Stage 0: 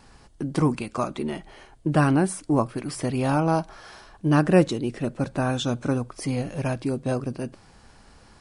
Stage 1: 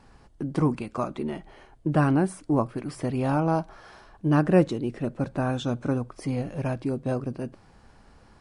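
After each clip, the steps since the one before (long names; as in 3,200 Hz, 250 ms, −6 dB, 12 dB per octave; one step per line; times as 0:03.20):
high-shelf EQ 2,700 Hz −9 dB
level −1.5 dB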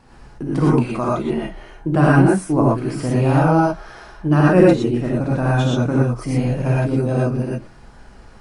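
reverb whose tail is shaped and stops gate 140 ms rising, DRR −5.5 dB
level +3 dB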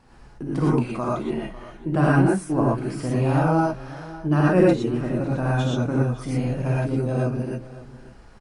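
single-tap delay 548 ms −17.5 dB
level −5 dB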